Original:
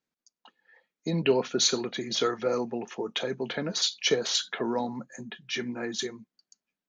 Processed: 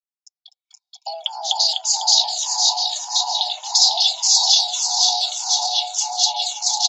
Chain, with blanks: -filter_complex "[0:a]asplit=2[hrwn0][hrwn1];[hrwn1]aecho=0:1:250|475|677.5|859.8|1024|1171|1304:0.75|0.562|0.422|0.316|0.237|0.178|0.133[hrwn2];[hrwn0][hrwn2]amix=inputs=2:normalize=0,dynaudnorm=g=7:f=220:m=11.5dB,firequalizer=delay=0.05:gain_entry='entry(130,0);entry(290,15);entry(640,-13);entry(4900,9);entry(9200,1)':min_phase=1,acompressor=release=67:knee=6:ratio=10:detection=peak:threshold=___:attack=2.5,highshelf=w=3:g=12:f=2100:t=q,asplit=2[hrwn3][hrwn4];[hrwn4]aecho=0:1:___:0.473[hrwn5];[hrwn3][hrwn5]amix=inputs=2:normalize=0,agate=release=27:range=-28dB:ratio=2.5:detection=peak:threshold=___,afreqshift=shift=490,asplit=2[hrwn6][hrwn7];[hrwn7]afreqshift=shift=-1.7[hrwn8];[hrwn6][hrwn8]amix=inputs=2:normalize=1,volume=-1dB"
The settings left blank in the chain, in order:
-23dB, 501, -34dB